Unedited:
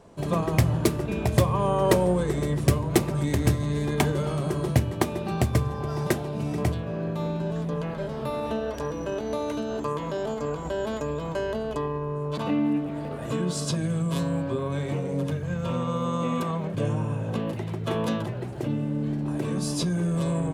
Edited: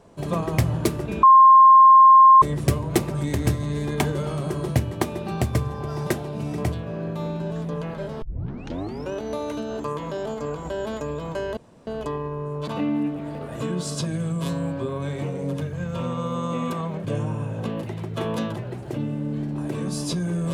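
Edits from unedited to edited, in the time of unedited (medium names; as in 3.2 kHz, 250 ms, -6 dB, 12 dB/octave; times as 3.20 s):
1.23–2.42 s: bleep 1.06 kHz -7.5 dBFS
8.22 s: tape start 0.90 s
11.57 s: insert room tone 0.30 s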